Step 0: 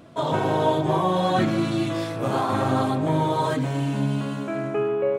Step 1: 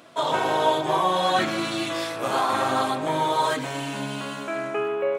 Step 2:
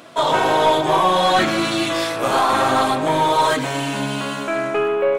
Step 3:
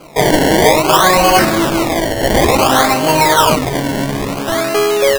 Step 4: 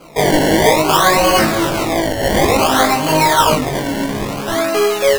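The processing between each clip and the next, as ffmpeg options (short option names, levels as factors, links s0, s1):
-af "highpass=f=1100:p=1,volume=2"
-af "aeval=exprs='(tanh(5.62*val(0)+0.1)-tanh(0.1))/5.62':c=same,volume=2.37"
-af "acrusher=samples=24:mix=1:aa=0.000001:lfo=1:lforange=24:lforate=0.57,volume=2"
-af "flanger=delay=18:depth=2.3:speed=1.5,volume=1.12"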